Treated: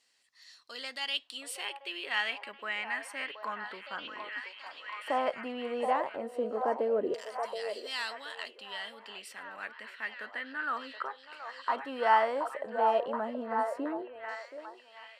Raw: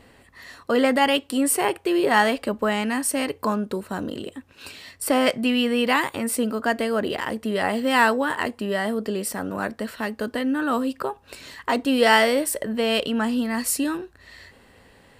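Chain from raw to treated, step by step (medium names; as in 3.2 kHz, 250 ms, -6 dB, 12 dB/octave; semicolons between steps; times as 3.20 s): LFO band-pass saw down 0.14 Hz 430–6000 Hz; repeats whose band climbs or falls 725 ms, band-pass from 720 Hz, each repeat 0.7 oct, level -3 dB; trim -2.5 dB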